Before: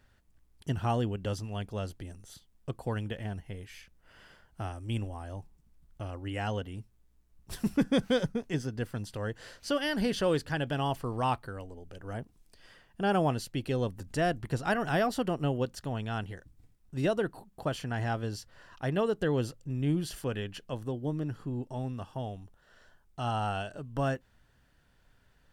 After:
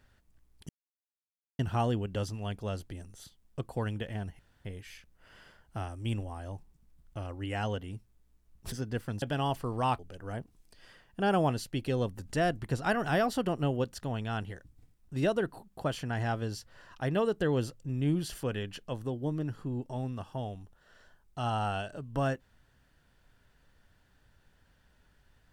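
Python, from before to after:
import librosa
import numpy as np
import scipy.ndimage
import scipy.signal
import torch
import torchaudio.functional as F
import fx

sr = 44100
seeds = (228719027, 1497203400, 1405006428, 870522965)

y = fx.edit(x, sr, fx.insert_silence(at_s=0.69, length_s=0.9),
    fx.insert_room_tone(at_s=3.49, length_s=0.26),
    fx.cut(start_s=7.56, length_s=1.02),
    fx.cut(start_s=9.08, length_s=1.54),
    fx.cut(start_s=11.39, length_s=0.41), tone=tone)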